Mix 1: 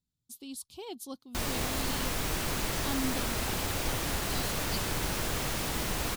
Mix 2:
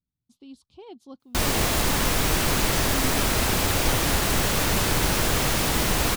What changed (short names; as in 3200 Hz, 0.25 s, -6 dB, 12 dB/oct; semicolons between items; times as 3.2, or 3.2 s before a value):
speech: add tape spacing loss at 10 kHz 25 dB; background +9.5 dB